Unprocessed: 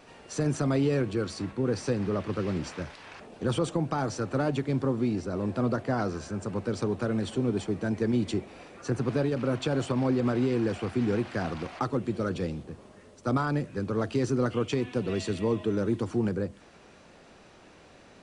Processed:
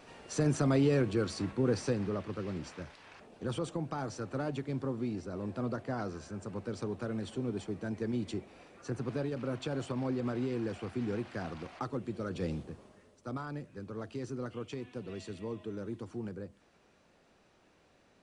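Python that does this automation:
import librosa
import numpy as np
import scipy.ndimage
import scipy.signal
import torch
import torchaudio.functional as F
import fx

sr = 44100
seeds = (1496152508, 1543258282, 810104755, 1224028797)

y = fx.gain(x, sr, db=fx.line((1.72, -1.5), (2.33, -8.0), (12.29, -8.0), (12.54, -1.0), (13.28, -12.5)))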